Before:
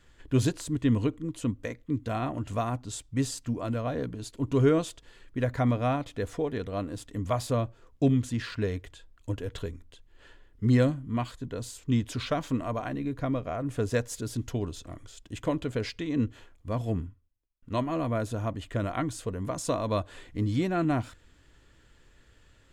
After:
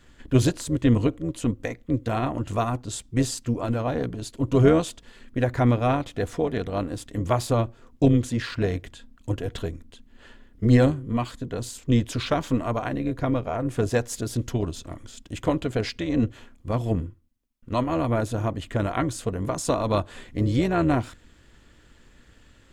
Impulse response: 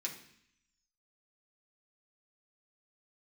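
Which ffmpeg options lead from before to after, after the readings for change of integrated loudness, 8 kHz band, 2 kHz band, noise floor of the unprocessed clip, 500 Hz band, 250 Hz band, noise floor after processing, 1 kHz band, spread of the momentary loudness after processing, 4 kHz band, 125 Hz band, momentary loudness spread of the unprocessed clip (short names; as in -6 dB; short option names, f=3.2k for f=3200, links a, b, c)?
+5.0 dB, +5.0 dB, +5.0 dB, -60 dBFS, +5.0 dB, +4.5 dB, -56 dBFS, +5.0 dB, 11 LU, +5.0 dB, +5.0 dB, 11 LU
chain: -af "tremolo=f=240:d=0.571,volume=7.5dB"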